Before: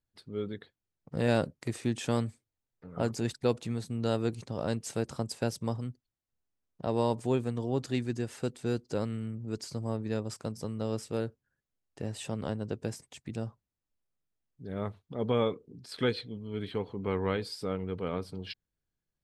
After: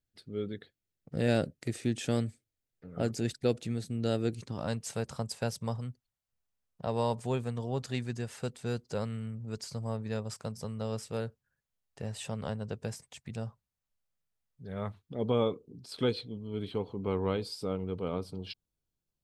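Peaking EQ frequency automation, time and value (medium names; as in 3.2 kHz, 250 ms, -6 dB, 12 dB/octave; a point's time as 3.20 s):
peaking EQ -11.5 dB 0.55 oct
4.34 s 1 kHz
4.74 s 310 Hz
14.83 s 310 Hz
15.29 s 1.8 kHz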